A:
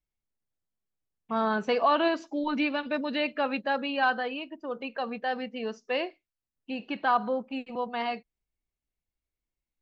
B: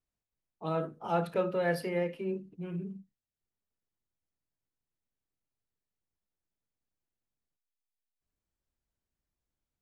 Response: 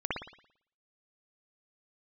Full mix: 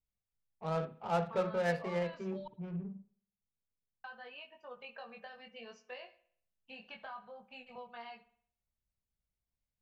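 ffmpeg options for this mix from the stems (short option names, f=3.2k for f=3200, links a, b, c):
-filter_complex "[0:a]equalizer=f=290:t=o:w=0.79:g=-14,acrossover=split=160[a][b];[b]acompressor=threshold=-36dB:ratio=10[c];[a][c]amix=inputs=2:normalize=0,flanger=delay=20:depth=2.5:speed=0.66,volume=-5.5dB,asplit=3[d][e][f];[d]atrim=end=2.48,asetpts=PTS-STARTPTS,afade=t=out:st=2.476:d=0.004:c=hsin[g];[e]atrim=start=2.48:end=4.04,asetpts=PTS-STARTPTS,volume=0[h];[f]atrim=start=4.04,asetpts=PTS-STARTPTS,afade=t=in:d=0.004:c=hsin[i];[g][h][i]concat=n=3:v=0:a=1,asplit=2[j][k];[k]volume=-21dB[l];[1:a]adynamicsmooth=sensitivity=7.5:basefreq=690,volume=-2dB,asplit=2[m][n];[n]volume=-23.5dB[o];[2:a]atrim=start_sample=2205[p];[l][o]amix=inputs=2:normalize=0[q];[q][p]afir=irnorm=-1:irlink=0[r];[j][m][r]amix=inputs=3:normalize=0,equalizer=f=320:w=3.5:g=-12"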